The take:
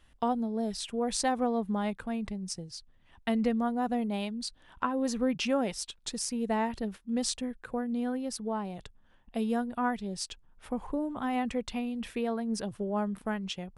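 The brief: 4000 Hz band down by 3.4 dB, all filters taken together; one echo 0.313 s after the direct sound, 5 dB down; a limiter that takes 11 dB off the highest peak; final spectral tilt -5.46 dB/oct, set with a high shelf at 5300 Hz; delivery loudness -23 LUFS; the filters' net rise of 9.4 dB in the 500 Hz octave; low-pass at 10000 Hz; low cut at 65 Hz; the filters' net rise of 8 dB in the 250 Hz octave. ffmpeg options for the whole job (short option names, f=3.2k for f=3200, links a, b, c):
-af "highpass=65,lowpass=10k,equalizer=f=250:t=o:g=7,equalizer=f=500:t=o:g=9,equalizer=f=4k:t=o:g=-9,highshelf=f=5.3k:g=8,alimiter=limit=-20dB:level=0:latency=1,aecho=1:1:313:0.562,volume=5dB"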